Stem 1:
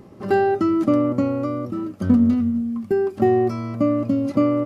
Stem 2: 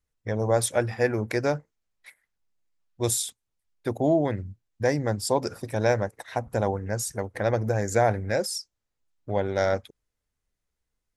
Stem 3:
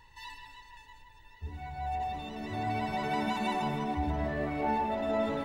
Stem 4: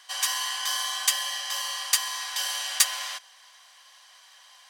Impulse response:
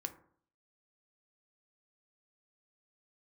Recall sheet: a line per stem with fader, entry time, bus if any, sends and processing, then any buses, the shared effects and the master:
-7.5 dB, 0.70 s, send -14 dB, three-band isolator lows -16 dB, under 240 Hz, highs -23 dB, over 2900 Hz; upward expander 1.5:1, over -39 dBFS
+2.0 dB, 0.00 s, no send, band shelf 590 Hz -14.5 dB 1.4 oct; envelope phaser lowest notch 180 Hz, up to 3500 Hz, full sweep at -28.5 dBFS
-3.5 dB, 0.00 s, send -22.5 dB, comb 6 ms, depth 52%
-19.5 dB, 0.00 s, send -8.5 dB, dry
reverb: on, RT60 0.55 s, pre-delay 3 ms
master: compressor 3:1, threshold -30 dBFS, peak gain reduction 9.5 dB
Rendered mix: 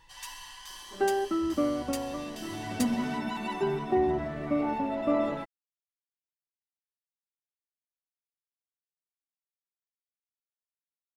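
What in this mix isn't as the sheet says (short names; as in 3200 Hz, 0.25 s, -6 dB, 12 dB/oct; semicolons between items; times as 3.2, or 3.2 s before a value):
stem 2: muted; master: missing compressor 3:1, threshold -30 dBFS, peak gain reduction 9.5 dB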